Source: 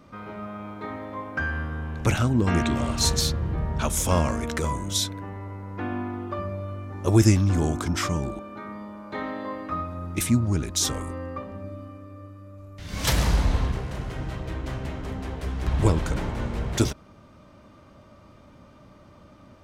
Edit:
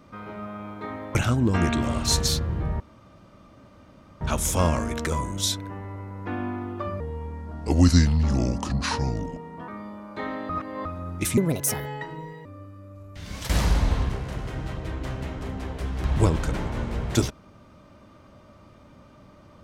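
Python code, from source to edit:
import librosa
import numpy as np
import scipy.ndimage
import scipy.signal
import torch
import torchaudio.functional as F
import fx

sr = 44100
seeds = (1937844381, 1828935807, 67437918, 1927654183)

y = fx.edit(x, sr, fx.cut(start_s=1.15, length_s=0.93),
    fx.insert_room_tone(at_s=3.73, length_s=1.41),
    fx.speed_span(start_s=6.52, length_s=2.12, speed=0.79),
    fx.reverse_span(start_s=9.45, length_s=0.36),
    fx.speed_span(start_s=10.33, length_s=1.75, speed=1.62),
    fx.fade_out_to(start_s=12.84, length_s=0.28, floor_db=-16.5), tone=tone)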